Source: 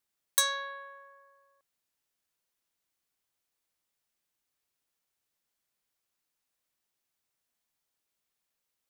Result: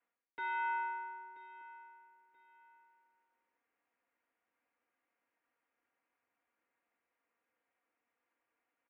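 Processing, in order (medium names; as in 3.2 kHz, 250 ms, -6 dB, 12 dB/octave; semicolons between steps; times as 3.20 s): comb filter that takes the minimum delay 4.4 ms; reverse; compression 16:1, threshold -40 dBFS, peak gain reduction 20.5 dB; reverse; feedback delay 981 ms, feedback 27%, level -17.5 dB; mistuned SSB -180 Hz 420–2500 Hz; trim +8.5 dB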